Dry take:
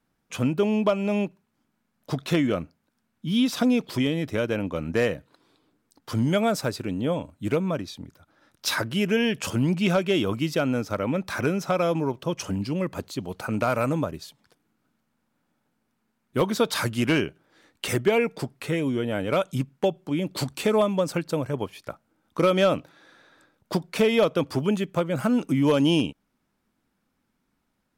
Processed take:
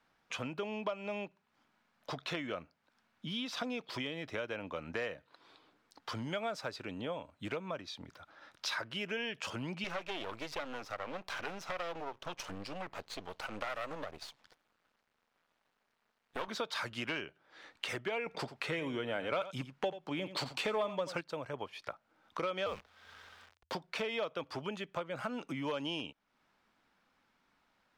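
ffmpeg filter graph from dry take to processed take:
-filter_complex "[0:a]asettb=1/sr,asplit=3[a][b][c];[a]atrim=end=9.844[d];[b]atrim=start=9.84:end=16.48,asetpts=PTS-STARTPTS,afade=t=in:d=0.004:c=qsin,afade=t=out:st=6.636:d=0.004:c=qsin,aeval=exprs='max(val(0),0)':c=same,highshelf=f=6.8k:g=5[e];[c]atrim=start=16.476[f];[d][e]acrossfade=d=0.004:c1=hsin:c2=qsin[g];[g][f]acrossfade=d=0.004:c1=qsin:c2=hsin,asettb=1/sr,asplit=3[h][i][j];[h]atrim=end=18.264[k];[i]atrim=start=18.26:end=21.21,asetpts=PTS-STARTPTS,afade=t=in:d=0.004:c=qsin,afade=t=out:st=2.946:d=0.004:c=qsin,bandreject=f=50:t=h:w=6,bandreject=f=100:t=h:w=6,acontrast=81,aecho=1:1:86:0.188,atrim=end_sample=130095[l];[j]atrim=start=21.206[m];[k][l]acrossfade=d=0.004:c1=hsin:c2=qsin[n];[n][m]acrossfade=d=0.004:c1=qsin:c2=hsin,asettb=1/sr,asplit=3[o][p][q];[o]atrim=end=22.664[r];[p]atrim=start=22.66:end=23.75,asetpts=PTS-STARTPTS,afade=t=in:d=0.004:c=qsin,afade=t=out:st=1.086:d=0.004:c=qsin,acrusher=bits=7:dc=4:mix=0:aa=0.000001,afreqshift=-87[s];[q]atrim=start=23.746[t];[r][s]acrossfade=d=0.004:c1=hsin:c2=qsin[u];[u][t]acrossfade=d=0.004:c1=qsin:c2=hsin,acrossover=split=540 5500:gain=0.224 1 0.141[v][w][x];[v][w][x]amix=inputs=3:normalize=0,acompressor=threshold=-49dB:ratio=2.5,volume=6dB"

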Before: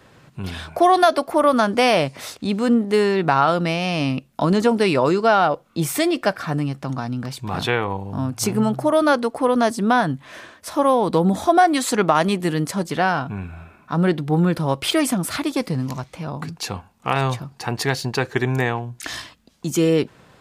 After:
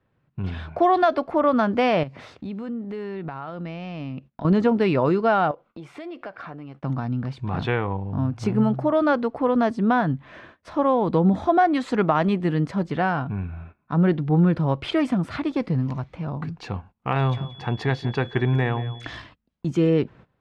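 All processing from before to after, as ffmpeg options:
-filter_complex "[0:a]asettb=1/sr,asplit=3[a][b][c];[a]atrim=end=2.034[d];[b]atrim=start=2.03:end=4.45,asetpts=PTS-STARTPTS,afade=t=in:d=0.004:c=qsin,afade=t=out:st=2.416:d=0.004:c=qsin,highpass=60,acompressor=threshold=-31dB:ratio=3:attack=3.2:release=140:knee=1:detection=peak[e];[c]atrim=start=4.446[f];[d][e]acrossfade=d=0.004:c1=hsin:c2=qsin[g];[g][f]acrossfade=d=0.004:c1=qsin:c2=hsin,asettb=1/sr,asplit=3[h][i][j];[h]atrim=end=5.514[k];[i]atrim=start=5.51:end=6.84,asetpts=PTS-STARTPTS,afade=t=in:d=0.004:c=qsin,afade=t=out:st=1.326:d=0.004:c=qsin,acompressor=threshold=-27dB:ratio=6:attack=3.2:release=140:knee=1:detection=peak,bass=f=250:g=-13,treble=f=4k:g=-5,bandreject=f=1.8k:w=18[l];[j]atrim=start=6.836[m];[k][l]acrossfade=d=0.004:c1=hsin:c2=qsin[n];[n][m]acrossfade=d=0.004:c1=qsin:c2=hsin,asettb=1/sr,asplit=3[o][p][q];[o]atrim=end=17.194[r];[p]atrim=start=17.19:end=19.18,asetpts=PTS-STARTPTS,afade=t=in:d=0.004:c=qsin,afade=t=out:st=1.986:d=0.004:c=qsin,aeval=exprs='val(0)+0.0224*sin(2*PI*3400*n/s)':c=same,asplit=2[s][t];[t]adelay=176,lowpass=f=3k:p=1,volume=-14.5dB,asplit=2[u][v];[v]adelay=176,lowpass=f=3k:p=1,volume=0.17[w];[s][u][w]amix=inputs=3:normalize=0,atrim=end_sample=87759[x];[q]atrim=start=19.176[y];[r][x]acrossfade=d=0.004:c1=hsin:c2=qsin[z];[z][y]acrossfade=d=0.004:c1=qsin:c2=hsin,agate=range=-18dB:threshold=-43dB:ratio=16:detection=peak,lowpass=2.7k,lowshelf=f=210:g=8.5,volume=-4.5dB"

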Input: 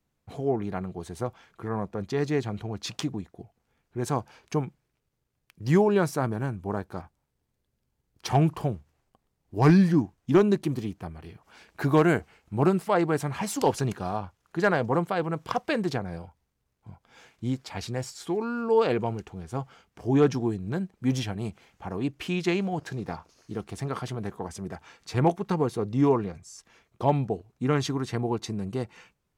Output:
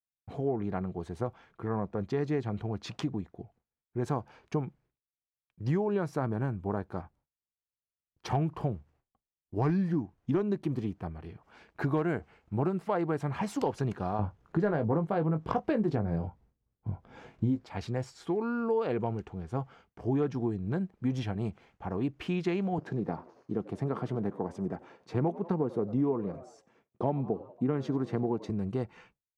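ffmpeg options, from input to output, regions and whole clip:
-filter_complex "[0:a]asettb=1/sr,asplit=3[a][b][c];[a]atrim=end=14.194[d];[b]atrim=start=14.19:end=17.66,asetpts=PTS-STARTPTS,afade=t=in:d=0.004:c=qsin,afade=t=out:st=3.466:d=0.004:c=qsin,tiltshelf=f=730:g=5,acontrast=49,asplit=2[e][f];[f]adelay=19,volume=-8dB[g];[e][g]amix=inputs=2:normalize=0,atrim=end_sample=153027[h];[c]atrim=start=17.656[i];[d][h]acrossfade=d=0.004:c1=hsin:c2=qsin[j];[j][i]acrossfade=d=0.004:c1=qsin:c2=hsin,asettb=1/sr,asplit=3[k][l][m];[k]atrim=end=22.784[n];[l]atrim=start=22.78:end=28.5,asetpts=PTS-STARTPTS,afade=t=in:d=0.004:c=qsin,afade=t=out:st=5.716:d=0.004:c=qsin,highpass=160,tiltshelf=f=890:g=5.5,asplit=5[o][p][q][r][s];[p]adelay=93,afreqshift=85,volume=-20.5dB[t];[q]adelay=186,afreqshift=170,volume=-26.5dB[u];[r]adelay=279,afreqshift=255,volume=-32.5dB[v];[s]adelay=372,afreqshift=340,volume=-38.6dB[w];[o][t][u][v][w]amix=inputs=5:normalize=0,atrim=end_sample=252252[x];[m]atrim=start=28.496[y];[n][x]acrossfade=d=0.004:c1=hsin:c2=qsin[z];[z][y]acrossfade=d=0.004:c1=qsin:c2=hsin,lowpass=f=1.6k:p=1,agate=range=-33dB:threshold=-56dB:ratio=3:detection=peak,acompressor=threshold=-26dB:ratio=5"

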